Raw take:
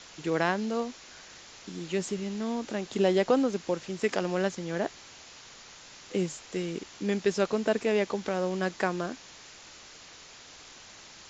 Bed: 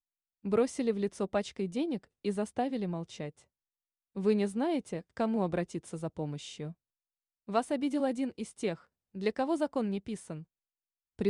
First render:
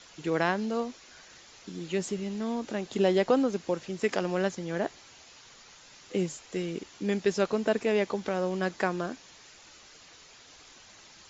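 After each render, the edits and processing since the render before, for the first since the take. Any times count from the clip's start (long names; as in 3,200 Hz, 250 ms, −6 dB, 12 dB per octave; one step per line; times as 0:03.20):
broadband denoise 6 dB, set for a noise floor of −50 dBFS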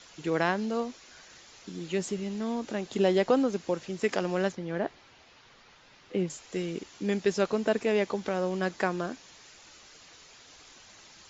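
0:04.52–0:06.30: high-frequency loss of the air 180 metres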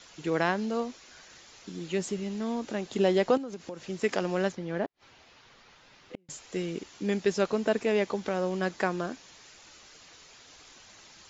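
0:03.37–0:03.88: downward compressor 8 to 1, threshold −34 dBFS
0:04.85–0:06.29: gate with flip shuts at −30 dBFS, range −40 dB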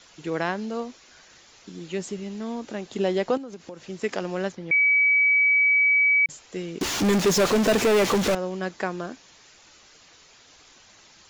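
0:04.71–0:06.26: beep over 2,280 Hz −16 dBFS
0:06.81–0:08.35: power curve on the samples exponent 0.35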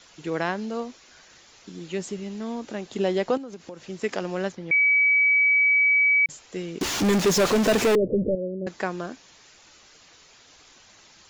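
0:07.95–0:08.67: Chebyshev low-pass filter 580 Hz, order 6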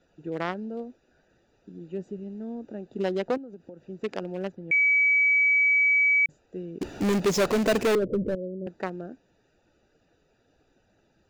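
adaptive Wiener filter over 41 samples
low-shelf EQ 420 Hz −3.5 dB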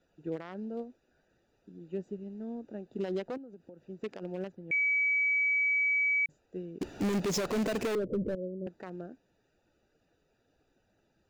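brickwall limiter −24.5 dBFS, peak gain reduction 11 dB
expander for the loud parts 1.5 to 1, over −40 dBFS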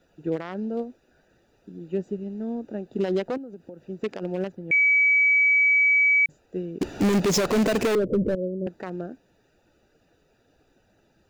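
level +9 dB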